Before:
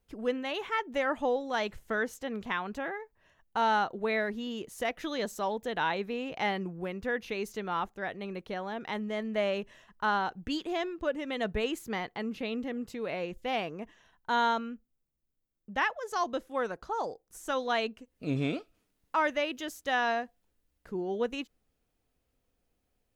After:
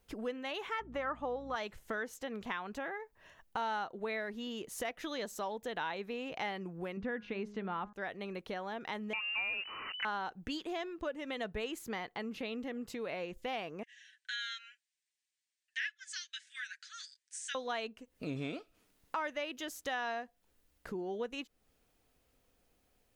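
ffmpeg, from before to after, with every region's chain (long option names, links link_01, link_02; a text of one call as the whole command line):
ffmpeg -i in.wav -filter_complex "[0:a]asettb=1/sr,asplit=3[link_01][link_02][link_03];[link_01]atrim=end=0.804[link_04];[link_02]atrim=start=0.8:end=1.56,asetpts=PTS-STARTPTS,afade=type=in:duration=0.004:curve=qsin,afade=type=out:start_time=0.756:duration=0.004:curve=qsin,lowpass=frequency=2200:poles=1,equalizer=frequency=1200:width_type=o:width=0.31:gain=11.5,aeval=exprs='val(0)+0.00562*(sin(2*PI*60*n/s)+sin(2*PI*2*60*n/s)/2+sin(2*PI*3*60*n/s)/3+sin(2*PI*4*60*n/s)/4+sin(2*PI*5*60*n/s)/5)':channel_layout=same[link_05];[link_03]atrim=start=1.556[link_06];[link_04][link_05]acrossfade=duration=0.004:curve1=hsin:curve2=qsin[link_07];[link_07][link_06]acrossfade=duration=0.004:curve1=qsin:curve2=hsin,asettb=1/sr,asplit=3[link_08][link_09][link_10];[link_08]atrim=end=6.974[link_11];[link_09]atrim=start=6.97:end=7.93,asetpts=PTS-STARTPTS,afade=type=in:duration=0.004:curve=qsin,afade=type=out:start_time=0.956:duration=0.004:curve=qsin,lowpass=2800,equalizer=frequency=210:width_type=o:width=1:gain=8.5,bandreject=frequency=207.2:width_type=h:width=4,bandreject=frequency=414.4:width_type=h:width=4,bandreject=frequency=621.6:width_type=h:width=4,bandreject=frequency=828.8:width_type=h:width=4,bandreject=frequency=1036:width_type=h:width=4,bandreject=frequency=1243.2:width_type=h:width=4,bandreject=frequency=1450.4:width_type=h:width=4,bandreject=frequency=1657.6:width_type=h:width=4[link_12];[link_10]atrim=start=7.926[link_13];[link_11][link_12]acrossfade=duration=0.004:curve1=hsin:curve2=qsin[link_14];[link_14][link_13]acrossfade=duration=0.004:curve1=qsin:curve2=hsin,asettb=1/sr,asplit=3[link_15][link_16][link_17];[link_15]atrim=end=9.134[link_18];[link_16]atrim=start=9.13:end=10.05,asetpts=PTS-STARTPTS,afade=type=in:duration=0.004:curve=qsin,afade=type=out:start_time=0.916:duration=0.004:curve=qsin,aeval=exprs='val(0)+0.5*0.0126*sgn(val(0))':channel_layout=same,lowpass=frequency=2600:width_type=q:width=0.5098,lowpass=frequency=2600:width_type=q:width=0.6013,lowpass=frequency=2600:width_type=q:width=0.9,lowpass=frequency=2600:width_type=q:width=2.563,afreqshift=-3000[link_19];[link_17]atrim=start=10.046[link_20];[link_18][link_19]acrossfade=duration=0.004:curve1=hsin:curve2=qsin[link_21];[link_21][link_20]acrossfade=duration=0.004:curve1=qsin:curve2=hsin,asettb=1/sr,asplit=3[link_22][link_23][link_24];[link_22]atrim=end=13.834[link_25];[link_23]atrim=start=13.83:end=17.55,asetpts=PTS-STARTPTS,afade=type=in:duration=0.004:curve=qsin,afade=type=out:start_time=3.716:duration=0.004:curve=qsin,asuperpass=centerf=4100:order=20:qfactor=0.53,aecho=1:1:7.2:0.53,atrim=end_sample=164052[link_26];[link_24]atrim=start=17.546[link_27];[link_25][link_26]acrossfade=duration=0.004:curve1=hsin:curve2=qsin[link_28];[link_28][link_27]acrossfade=duration=0.004:curve1=qsin:curve2=hsin,lowshelf=frequency=340:gain=-5,acompressor=threshold=-49dB:ratio=2.5,volume=7dB" out.wav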